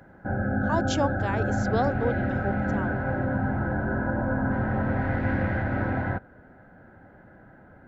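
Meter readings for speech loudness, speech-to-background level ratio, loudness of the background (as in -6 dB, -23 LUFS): -31.0 LUFS, -3.5 dB, -27.5 LUFS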